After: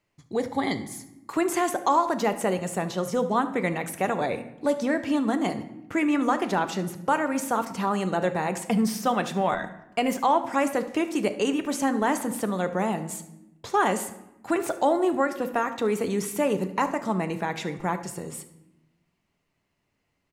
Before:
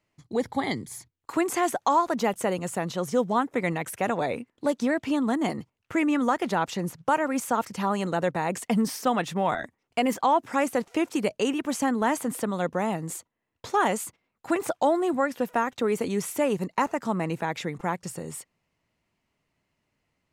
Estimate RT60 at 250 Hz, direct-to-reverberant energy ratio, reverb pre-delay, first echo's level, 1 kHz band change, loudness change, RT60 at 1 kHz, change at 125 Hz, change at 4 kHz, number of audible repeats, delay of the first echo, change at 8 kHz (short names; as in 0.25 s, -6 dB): 1.5 s, 8.0 dB, 3 ms, -17.5 dB, +0.5 dB, +0.5 dB, 0.85 s, +0.5 dB, +0.5 dB, 1, 73 ms, +0.5 dB